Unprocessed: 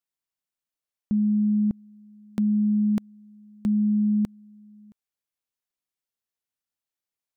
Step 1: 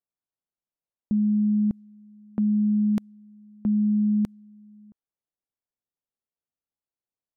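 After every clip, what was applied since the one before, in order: low-pass opened by the level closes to 870 Hz, open at -21.5 dBFS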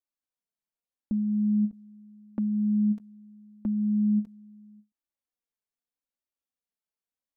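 flange 0.8 Hz, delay 3.2 ms, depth 1.5 ms, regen +7%; ending taper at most 320 dB/s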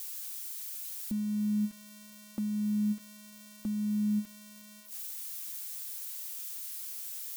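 switching spikes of -27.5 dBFS; gain -5.5 dB

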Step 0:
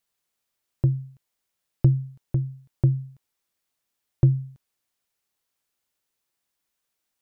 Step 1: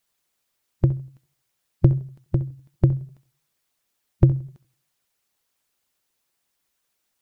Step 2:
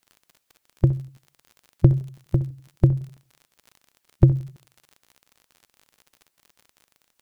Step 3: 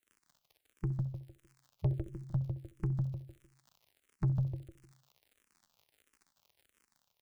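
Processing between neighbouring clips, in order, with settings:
harmonic-percussive split percussive +8 dB; flutter echo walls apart 11.3 m, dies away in 0.24 s; warbling echo 83 ms, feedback 37%, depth 168 cents, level -24 dB
crackle 48/s -38 dBFS; gain +1 dB
on a send: feedback echo 0.152 s, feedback 33%, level -6 dB; on the sum: soft clip -13 dBFS, distortion -9 dB; endless phaser -1.5 Hz; gain -9 dB

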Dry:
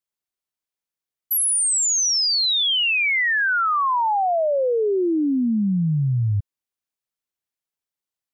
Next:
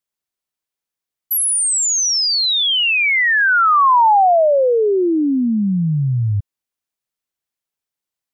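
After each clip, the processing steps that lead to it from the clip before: dynamic EQ 900 Hz, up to +6 dB, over -34 dBFS, Q 0.78; gain +3 dB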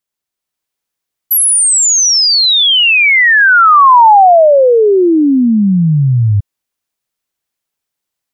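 AGC gain up to 4 dB; gain +3.5 dB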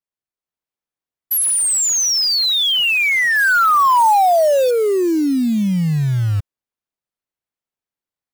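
short-mantissa float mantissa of 2-bit; mismatched tape noise reduction decoder only; gain -7.5 dB

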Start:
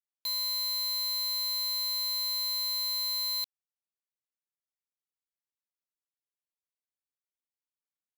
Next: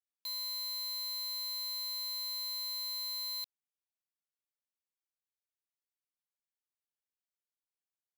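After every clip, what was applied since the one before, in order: low shelf 170 Hz -10.5 dB; gain -7 dB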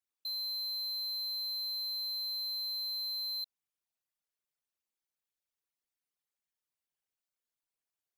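formant sharpening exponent 2; gain +1.5 dB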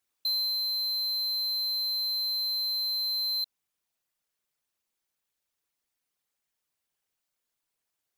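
vocal rider 0.5 s; gain +7.5 dB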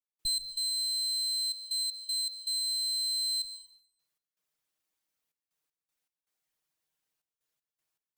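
minimum comb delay 6.4 ms; step gate ".x.xxxxx.x" 79 bpm -24 dB; reverb RT60 0.75 s, pre-delay 0.117 s, DRR 11 dB

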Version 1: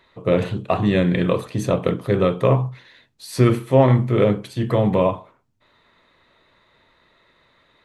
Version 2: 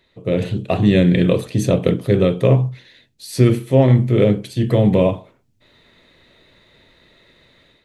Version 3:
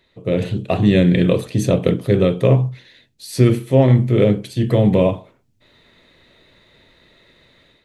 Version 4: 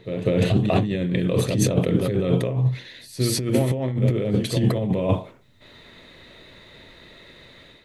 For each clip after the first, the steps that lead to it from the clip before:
bell 1100 Hz -12.5 dB 1.2 oct; AGC gain up to 9.5 dB
nothing audible
pre-echo 0.199 s -16 dB; negative-ratio compressor -21 dBFS, ratio -1

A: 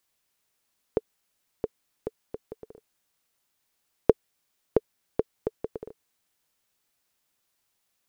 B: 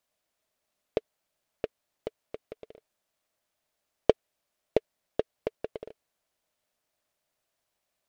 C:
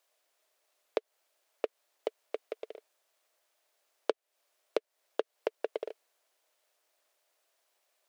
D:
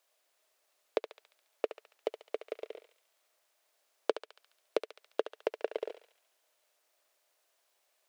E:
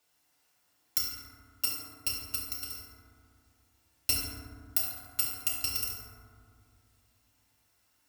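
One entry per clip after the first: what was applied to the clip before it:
bell 620 Hz +12.5 dB 0.45 oct; noise-modulated delay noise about 2100 Hz, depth 0.04 ms; gain -5 dB
compressor 6:1, threshold -31 dBFS, peak gain reduction 16.5 dB; inverse Chebyshev high-pass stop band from 180 Hz, stop band 40 dB; gain +5.5 dB
thinning echo 70 ms, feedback 60%, high-pass 930 Hz, level -7.5 dB
FFT order left unsorted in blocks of 256 samples; FDN reverb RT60 2.1 s, low-frequency decay 1.55×, high-frequency decay 0.3×, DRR -5.5 dB

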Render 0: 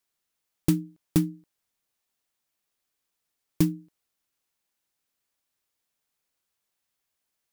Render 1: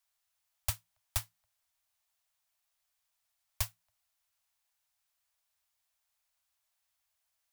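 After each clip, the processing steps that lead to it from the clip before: Chebyshev band-stop 110–610 Hz, order 5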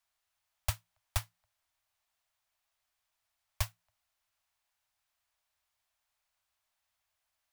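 high shelf 4500 Hz -8.5 dB; gain +3.5 dB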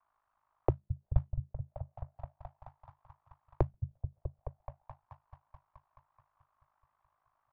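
repeats that get brighter 0.215 s, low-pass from 200 Hz, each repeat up 1 oct, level -6 dB; ring modulator 26 Hz; envelope low-pass 350–1100 Hz down, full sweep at -42.5 dBFS; gain +8.5 dB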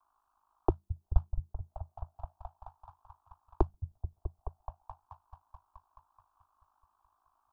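fixed phaser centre 540 Hz, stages 6; gain +5 dB

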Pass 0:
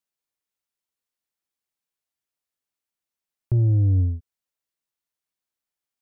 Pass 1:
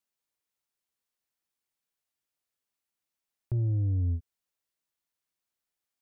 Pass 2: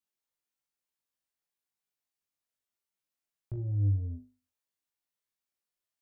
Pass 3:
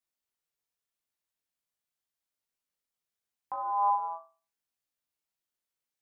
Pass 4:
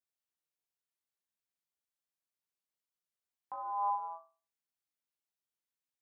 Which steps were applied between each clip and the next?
limiter -24.5 dBFS, peak gain reduction 9 dB
flutter echo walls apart 3.4 m, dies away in 0.34 s; gain -6.5 dB
ring modulator 910 Hz; gain +3 dB
HPF 64 Hz; gain -6.5 dB

